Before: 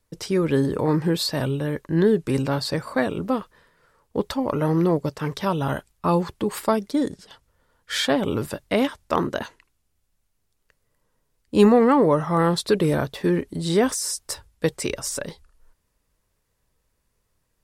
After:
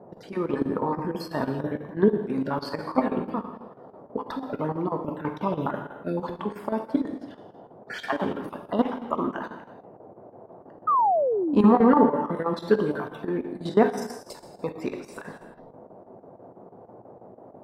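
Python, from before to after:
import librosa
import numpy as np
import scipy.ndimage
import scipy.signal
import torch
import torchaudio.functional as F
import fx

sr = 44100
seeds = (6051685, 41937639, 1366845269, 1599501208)

y = fx.spec_dropout(x, sr, seeds[0], share_pct=33)
y = fx.graphic_eq(y, sr, hz=(250, 1000, 8000), db=(11, 8, -9))
y = fx.dmg_noise_band(y, sr, seeds[1], low_hz=100.0, high_hz=680.0, level_db=-39.0)
y = fx.level_steps(y, sr, step_db=11)
y = fx.rev_gated(y, sr, seeds[2], gate_ms=390, shape='falling', drr_db=4.0)
y = fx.chopper(y, sr, hz=6.1, depth_pct=65, duty_pct=80)
y = fx.spec_paint(y, sr, seeds[3], shape='fall', start_s=10.87, length_s=0.79, low_hz=210.0, high_hz=1300.0, level_db=-20.0)
y = fx.peak_eq(y, sr, hz=1000.0, db=8.0, octaves=2.4)
y = F.gain(torch.from_numpy(y), -8.0).numpy()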